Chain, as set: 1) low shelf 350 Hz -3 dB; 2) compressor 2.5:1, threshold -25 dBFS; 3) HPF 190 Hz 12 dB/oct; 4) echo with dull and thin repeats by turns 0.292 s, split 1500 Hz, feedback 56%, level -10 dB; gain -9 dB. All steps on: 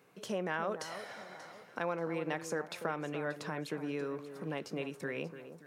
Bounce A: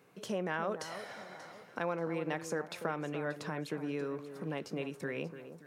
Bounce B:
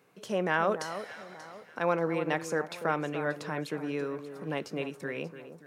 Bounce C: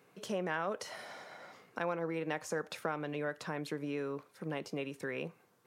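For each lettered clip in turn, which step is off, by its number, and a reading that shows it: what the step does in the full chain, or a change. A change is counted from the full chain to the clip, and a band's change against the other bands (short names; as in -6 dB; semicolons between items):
1, 125 Hz band +2.0 dB; 2, mean gain reduction 3.5 dB; 4, echo-to-direct -11.5 dB to none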